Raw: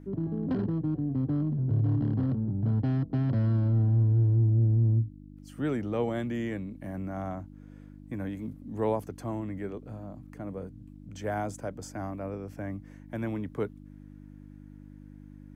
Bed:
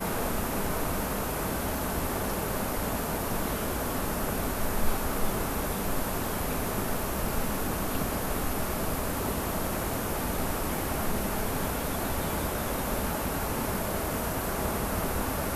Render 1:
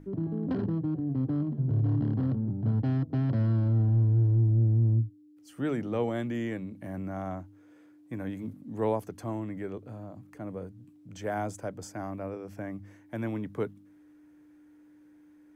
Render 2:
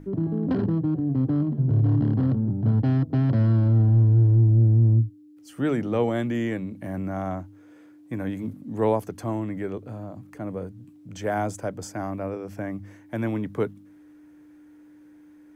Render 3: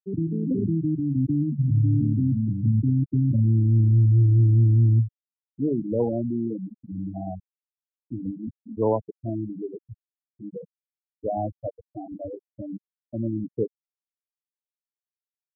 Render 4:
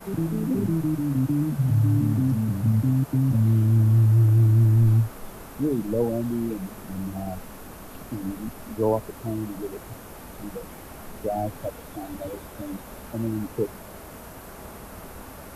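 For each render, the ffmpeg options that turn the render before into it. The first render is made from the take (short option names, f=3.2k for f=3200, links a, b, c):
-af "bandreject=f=50:t=h:w=4,bandreject=f=100:t=h:w=4,bandreject=f=150:t=h:w=4,bandreject=f=200:t=h:w=4,bandreject=f=250:t=h:w=4"
-af "volume=6dB"
-af "lowpass=2.1k,afftfilt=real='re*gte(hypot(re,im),0.178)':imag='im*gte(hypot(re,im),0.178)':win_size=1024:overlap=0.75"
-filter_complex "[1:a]volume=-11dB[a];[0:a][a]amix=inputs=2:normalize=0"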